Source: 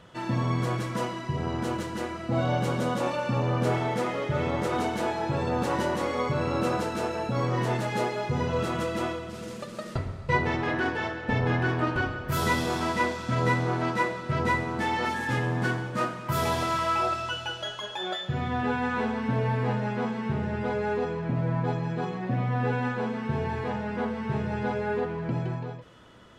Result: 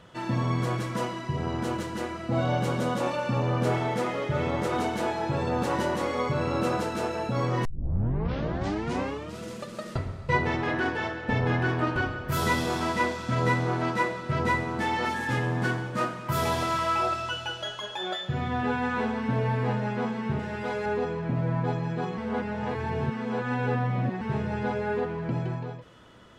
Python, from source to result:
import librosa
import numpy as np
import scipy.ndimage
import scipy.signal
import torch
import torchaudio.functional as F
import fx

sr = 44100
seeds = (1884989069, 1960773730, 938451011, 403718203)

y = fx.tilt_eq(x, sr, slope=2.0, at=(20.39, 20.86))
y = fx.edit(y, sr, fx.tape_start(start_s=7.65, length_s=1.74),
    fx.reverse_span(start_s=22.18, length_s=2.03), tone=tone)